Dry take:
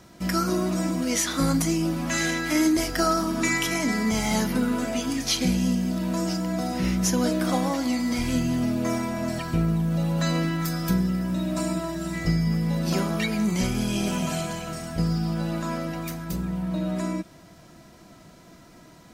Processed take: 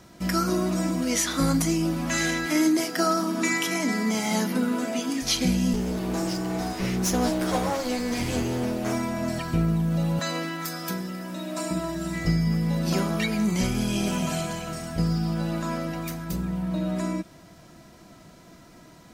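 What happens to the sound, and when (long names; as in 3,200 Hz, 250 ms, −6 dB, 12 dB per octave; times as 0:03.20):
0:02.46–0:05.22: elliptic high-pass filter 160 Hz
0:05.73–0:08.93: lower of the sound and its delayed copy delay 9.4 ms
0:10.19–0:11.71: Bessel high-pass filter 370 Hz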